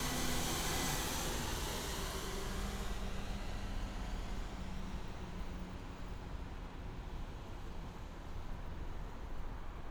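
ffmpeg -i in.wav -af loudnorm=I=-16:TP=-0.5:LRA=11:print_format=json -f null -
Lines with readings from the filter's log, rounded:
"input_i" : "-43.6",
"input_tp" : "-24.3",
"input_lra" : "10.2",
"input_thresh" : "-53.6",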